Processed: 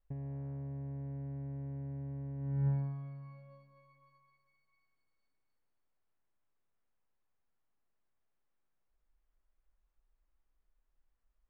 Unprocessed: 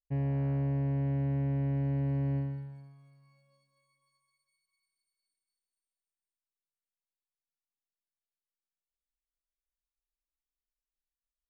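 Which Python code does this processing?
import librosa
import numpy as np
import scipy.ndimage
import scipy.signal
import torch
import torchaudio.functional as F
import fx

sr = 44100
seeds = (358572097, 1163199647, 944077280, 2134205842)

y = scipy.signal.sosfilt(scipy.signal.butter(2, 1500.0, 'lowpass', fs=sr, output='sos'), x)
y = fx.low_shelf(y, sr, hz=62.0, db=11.0)
y = fx.over_compress(y, sr, threshold_db=-41.0, ratio=-1.0)
y = y * 10.0 ** (2.0 / 20.0)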